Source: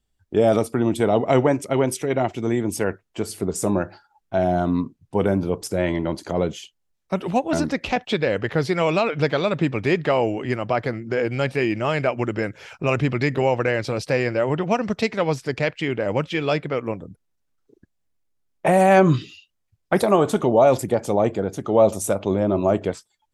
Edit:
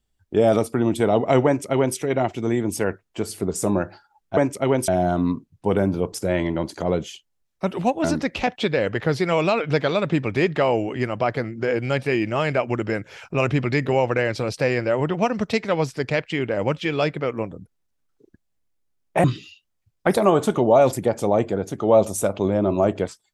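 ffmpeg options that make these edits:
-filter_complex "[0:a]asplit=4[s0][s1][s2][s3];[s0]atrim=end=4.372[s4];[s1]atrim=start=1.458:end=1.972[s5];[s2]atrim=start=4.368:end=18.732[s6];[s3]atrim=start=19.098[s7];[s4][s5]acrossfade=d=0.004:c1=hsin:c2=hsin[s8];[s8][s6]acrossfade=d=0.004:c1=hsin:c2=hsin[s9];[s9][s7]acrossfade=d=0.004:c1=hsin:c2=hsin"

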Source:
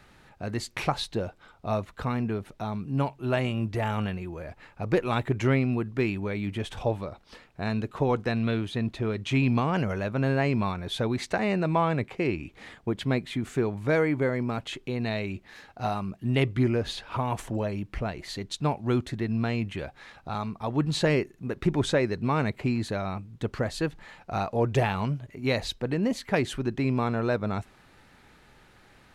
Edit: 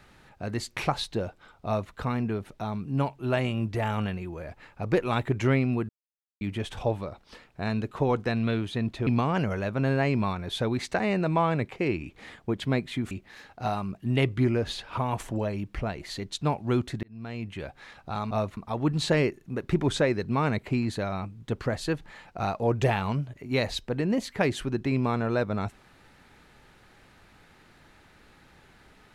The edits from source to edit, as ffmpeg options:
-filter_complex "[0:a]asplit=8[s0][s1][s2][s3][s4][s5][s6][s7];[s0]atrim=end=5.89,asetpts=PTS-STARTPTS,afade=t=out:st=5.886:d=0.004:c=hsin[s8];[s1]atrim=start=5.89:end=6.41,asetpts=PTS-STARTPTS,volume=0[s9];[s2]atrim=start=6.41:end=9.072,asetpts=PTS-STARTPTS,afade=t=in:d=0.004:c=hsin[s10];[s3]atrim=start=9.458:end=13.502[s11];[s4]atrim=start=15.298:end=19.22,asetpts=PTS-STARTPTS,afade=t=out:st=3.918:d=0.004:c=hsin[s12];[s5]atrim=start=19.22:end=20.502,asetpts=PTS-STARTPTS,afade=t=in:d=0.76[s13];[s6]atrim=start=1.658:end=1.922[s14];[s7]atrim=start=20.498[s15];[s8][s9][s10]concat=n=3:v=0:a=1[s16];[s16][s11]acrossfade=d=0.004:c1=hsin:c2=hsin[s17];[s12][s13]concat=n=2:v=0:a=1[s18];[s17][s18]acrossfade=d=0.004:c1=hsin:c2=hsin[s19];[s19][s14]acrossfade=d=0.004:c1=hsin:c2=hsin[s20];[s20][s15]acrossfade=d=0.004:c1=hsin:c2=hsin"

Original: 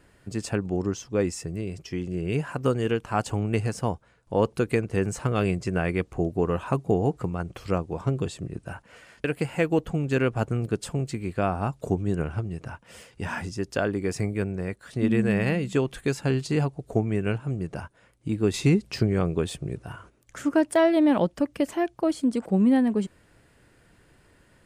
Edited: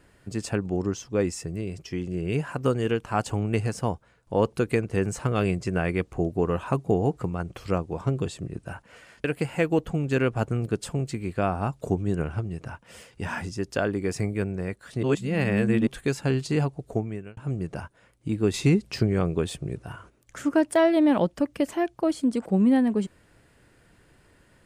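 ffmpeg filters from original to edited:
-filter_complex "[0:a]asplit=4[s0][s1][s2][s3];[s0]atrim=end=15.032[s4];[s1]atrim=start=15.028:end=15.872,asetpts=PTS-STARTPTS,areverse[s5];[s2]atrim=start=15.868:end=17.37,asetpts=PTS-STARTPTS,afade=t=out:st=0.942:d=0.56[s6];[s3]atrim=start=17.37,asetpts=PTS-STARTPTS,afade=t=in:d=0.004:c=hsin[s7];[s4][s5]acrossfade=d=0.004:c1=hsin:c2=hsin[s8];[s6][s7]concat=n=2:v=0:a=1[s9];[s8][s9]acrossfade=d=0.004:c1=hsin:c2=hsin"

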